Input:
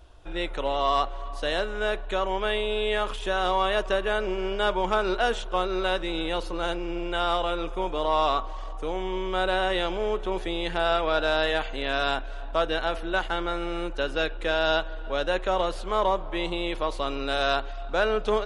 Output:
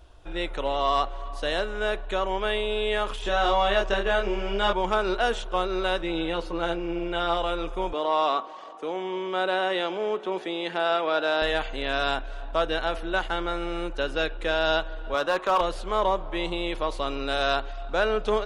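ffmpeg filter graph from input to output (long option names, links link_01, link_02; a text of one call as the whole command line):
ffmpeg -i in.wav -filter_complex "[0:a]asettb=1/sr,asplit=3[link_01][link_02][link_03];[link_01]atrim=end=3.224[link_04];[link_02]atrim=start=3.22:end=4.73,asetpts=PTS-STARTPTS,afade=type=in:duration=0.004:curve=qsin,afade=type=out:start_time=1.506:duration=0.004:curve=qsin,lowpass=frequency=7900:width=0.5412,lowpass=frequency=7900:width=1.3066,asplit=2[link_05][link_06];[link_06]adelay=25,volume=-2dB[link_07];[link_05][link_07]amix=inputs=2:normalize=0,atrim=end_sample=66591[link_08];[link_03]atrim=start=4.726[link_09];[link_04][link_08]acrossfade=duration=0.004:curve1=hsin:curve2=qsin[link_10];[link_10][link_09]acrossfade=duration=0.004:curve1=qsin:curve2=hsin,asettb=1/sr,asplit=3[link_11][link_12][link_13];[link_11]atrim=end=6.014[link_14];[link_12]atrim=start=6.01:end=7.37,asetpts=PTS-STARTPTS,afade=type=in:duration=0.004:curve=qsin,afade=type=out:start_time=1.356:duration=0.004:curve=qsin,lowpass=frequency=3700:poles=1,asplit=2[link_15][link_16];[link_16]adelay=12,volume=-7dB[link_17];[link_15][link_17]amix=inputs=2:normalize=0,atrim=end_sample=59976[link_18];[link_13]atrim=start=7.366[link_19];[link_14][link_18]acrossfade=duration=0.004:curve1=hsin:curve2=qsin[link_20];[link_20][link_19]acrossfade=duration=0.004:curve1=qsin:curve2=hsin,asettb=1/sr,asplit=3[link_21][link_22][link_23];[link_21]atrim=end=7.934[link_24];[link_22]atrim=start=7.93:end=11.42,asetpts=PTS-STARTPTS,afade=type=in:duration=0.004:curve=qsin,afade=type=out:start_time=3.486:duration=0.004:curve=qsin,highpass=frequency=190:width=0.5412,highpass=frequency=190:width=1.3066,highshelf=frequency=9200:gain=-12[link_25];[link_23]atrim=start=11.416[link_26];[link_24][link_25]acrossfade=duration=0.004:curve1=hsin:curve2=qsin[link_27];[link_27][link_26]acrossfade=duration=0.004:curve1=qsin:curve2=hsin,asettb=1/sr,asplit=3[link_28][link_29][link_30];[link_28]atrim=end=15.144[link_31];[link_29]atrim=start=15.14:end=15.61,asetpts=PTS-STARTPTS,afade=type=in:duration=0.004:curve=qsin,afade=type=out:start_time=0.466:duration=0.004:curve=qsin,highpass=140,equalizer=frequency=1100:width=2.7:gain=12,volume=16dB,asoftclip=hard,volume=-16dB[link_32];[link_30]atrim=start=15.606[link_33];[link_31][link_32]acrossfade=duration=0.004:curve1=hsin:curve2=qsin[link_34];[link_34][link_33]acrossfade=duration=0.004:curve1=qsin:curve2=hsin" out.wav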